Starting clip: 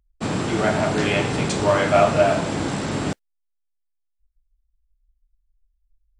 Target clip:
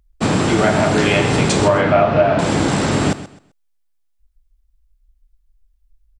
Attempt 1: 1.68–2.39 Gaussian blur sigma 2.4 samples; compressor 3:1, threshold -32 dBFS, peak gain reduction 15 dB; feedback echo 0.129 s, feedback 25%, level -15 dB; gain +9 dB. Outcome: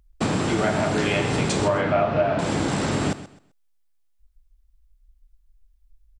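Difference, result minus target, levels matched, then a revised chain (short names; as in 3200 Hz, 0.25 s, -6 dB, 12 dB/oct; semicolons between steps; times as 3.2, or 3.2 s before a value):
compressor: peak gain reduction +7.5 dB
1.68–2.39 Gaussian blur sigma 2.4 samples; compressor 3:1, threshold -21 dBFS, peak gain reduction 7.5 dB; feedback echo 0.129 s, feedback 25%, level -15 dB; gain +9 dB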